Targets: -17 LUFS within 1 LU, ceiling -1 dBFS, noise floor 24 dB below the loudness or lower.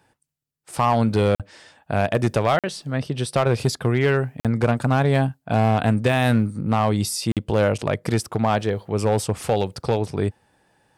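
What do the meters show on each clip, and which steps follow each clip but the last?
clipped samples 0.9%; clipping level -11.5 dBFS; dropouts 4; longest dropout 47 ms; loudness -22.0 LUFS; peak level -11.5 dBFS; loudness target -17.0 LUFS
-> clip repair -11.5 dBFS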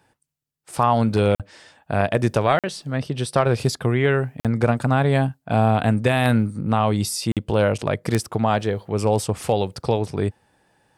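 clipped samples 0.0%; dropouts 4; longest dropout 47 ms
-> interpolate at 1.35/2.59/4.40/7.32 s, 47 ms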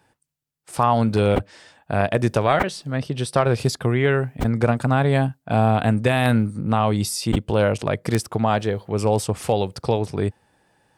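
dropouts 0; loudness -21.5 LUFS; peak level -2.5 dBFS; loudness target -17.0 LUFS
-> trim +4.5 dB; peak limiter -1 dBFS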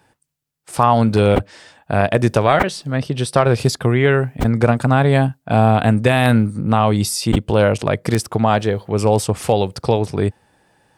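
loudness -17.0 LUFS; peak level -1.0 dBFS; noise floor -70 dBFS

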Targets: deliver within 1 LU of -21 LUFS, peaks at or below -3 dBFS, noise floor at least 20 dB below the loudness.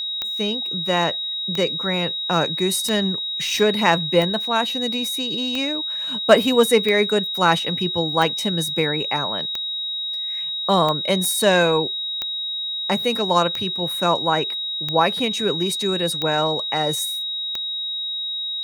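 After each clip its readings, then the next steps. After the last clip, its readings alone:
clicks found 14; steady tone 3.8 kHz; tone level -24 dBFS; loudness -20.5 LUFS; peak level -1.0 dBFS; loudness target -21.0 LUFS
-> de-click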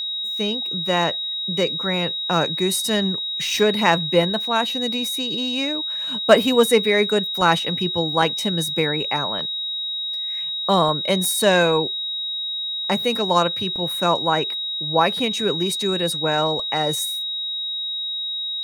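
clicks found 0; steady tone 3.8 kHz; tone level -24 dBFS
-> band-stop 3.8 kHz, Q 30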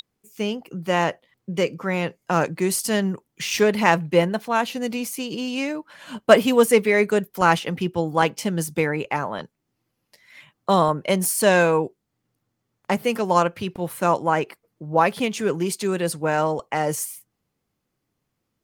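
steady tone not found; loudness -22.0 LUFS; peak level -1.5 dBFS; loudness target -21.0 LUFS
-> trim +1 dB; peak limiter -3 dBFS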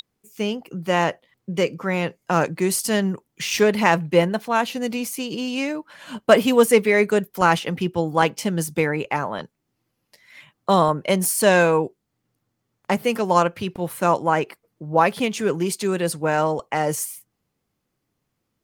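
loudness -21.0 LUFS; peak level -3.0 dBFS; noise floor -77 dBFS

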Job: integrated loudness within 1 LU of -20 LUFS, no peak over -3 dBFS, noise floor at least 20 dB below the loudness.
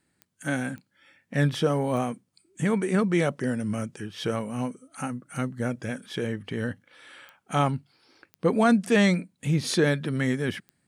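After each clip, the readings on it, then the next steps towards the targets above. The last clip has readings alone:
clicks found 6; loudness -27.0 LUFS; peak level -10.5 dBFS; loudness target -20.0 LUFS
-> de-click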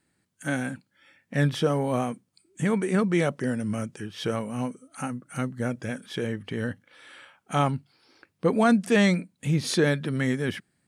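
clicks found 0; loudness -27.0 LUFS; peak level -10.5 dBFS; loudness target -20.0 LUFS
-> trim +7 dB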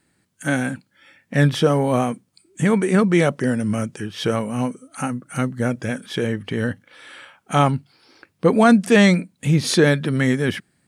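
loudness -20.0 LUFS; peak level -3.5 dBFS; noise floor -67 dBFS

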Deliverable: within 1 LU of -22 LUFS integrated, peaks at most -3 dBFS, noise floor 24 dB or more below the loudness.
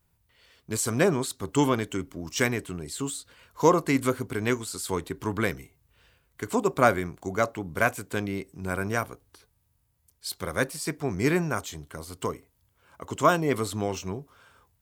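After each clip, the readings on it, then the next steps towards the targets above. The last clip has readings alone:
loudness -27.5 LUFS; peak level -4.5 dBFS; loudness target -22.0 LUFS
-> trim +5.5 dB; peak limiter -3 dBFS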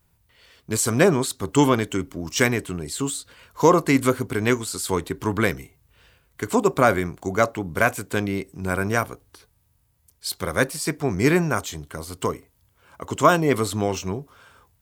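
loudness -22.5 LUFS; peak level -3.0 dBFS; noise floor -65 dBFS

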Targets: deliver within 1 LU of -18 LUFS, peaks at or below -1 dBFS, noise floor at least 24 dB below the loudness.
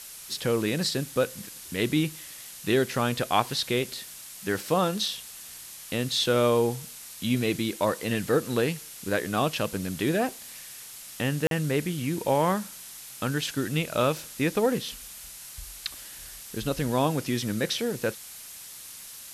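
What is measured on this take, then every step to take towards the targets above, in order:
dropouts 1; longest dropout 42 ms; noise floor -44 dBFS; noise floor target -52 dBFS; loudness -27.5 LUFS; peak level -6.5 dBFS; loudness target -18.0 LUFS
-> interpolate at 11.47 s, 42 ms; noise print and reduce 8 dB; trim +9.5 dB; peak limiter -1 dBFS

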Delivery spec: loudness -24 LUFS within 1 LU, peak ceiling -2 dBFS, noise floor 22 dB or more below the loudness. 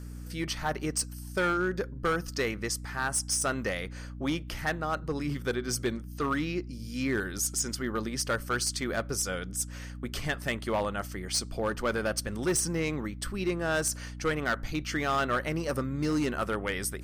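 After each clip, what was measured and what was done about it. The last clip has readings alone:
clipped samples 1.3%; clipping level -22.0 dBFS; hum 60 Hz; highest harmonic 300 Hz; hum level -39 dBFS; loudness -31.0 LUFS; peak level -22.0 dBFS; loudness target -24.0 LUFS
-> clip repair -22 dBFS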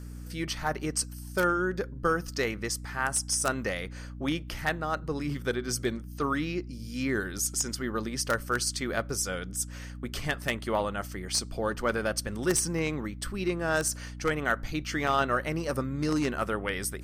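clipped samples 0.0%; hum 60 Hz; highest harmonic 300 Hz; hum level -39 dBFS
-> hum notches 60/120/180/240/300 Hz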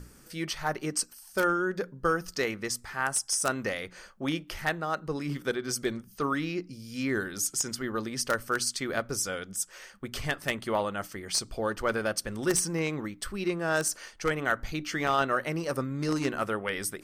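hum not found; loudness -30.5 LUFS; peak level -12.5 dBFS; loudness target -24.0 LUFS
-> trim +6.5 dB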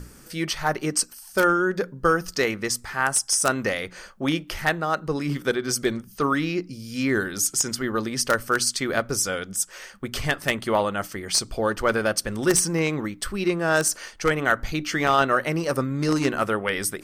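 loudness -24.0 LUFS; peak level -6.0 dBFS; noise floor -48 dBFS

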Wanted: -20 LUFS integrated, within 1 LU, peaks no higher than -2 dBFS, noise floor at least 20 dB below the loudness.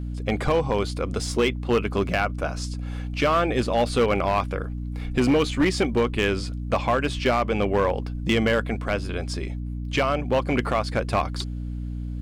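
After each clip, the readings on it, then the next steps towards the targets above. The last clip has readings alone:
clipped samples 1.3%; clipping level -14.5 dBFS; hum 60 Hz; highest harmonic 300 Hz; hum level -28 dBFS; loudness -24.5 LUFS; peak level -14.5 dBFS; loudness target -20.0 LUFS
-> clip repair -14.5 dBFS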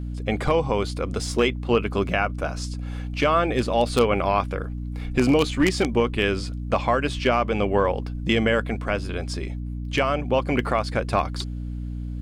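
clipped samples 0.0%; hum 60 Hz; highest harmonic 300 Hz; hum level -28 dBFS
-> de-hum 60 Hz, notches 5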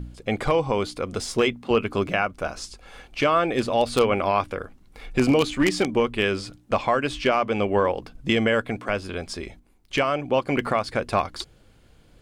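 hum not found; loudness -24.0 LUFS; peak level -5.0 dBFS; loudness target -20.0 LUFS
-> trim +4 dB; peak limiter -2 dBFS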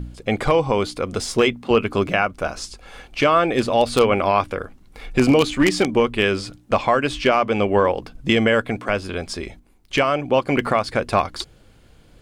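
loudness -20.0 LUFS; peak level -2.0 dBFS; noise floor -51 dBFS

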